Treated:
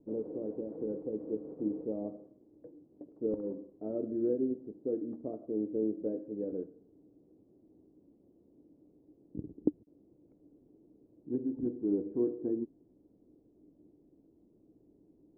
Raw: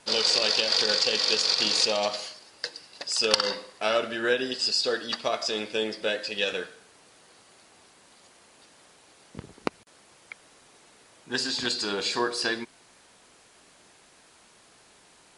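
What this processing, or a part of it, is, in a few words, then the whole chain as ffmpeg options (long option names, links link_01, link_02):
under water: -filter_complex "[0:a]asettb=1/sr,asplit=3[link_01][link_02][link_03];[link_01]atrim=end=6.034[link_04];[link_02]atrim=start=6.03:end=6.64,asetpts=PTS-STARTPTS,afade=type=in:duration=0.004:curve=qsin,afade=type=out:start_time=0.606:duration=0.004:curve=qsin,equalizer=frequency=1200:width_type=o:width=1.7:gain=3[link_05];[link_03]atrim=start=6.636[link_06];[link_04][link_05]acrossfade=duration=0.004:curve1=hsin:curve2=qsin[link_07];[link_07][link_06]acrossfade=duration=0.004:curve1=qsin:curve2=hsin,lowpass=frequency=410:width=0.5412,lowpass=frequency=410:width=1.3066,equalizer=frequency=300:width_type=o:width=0.33:gain=12,volume=-1.5dB"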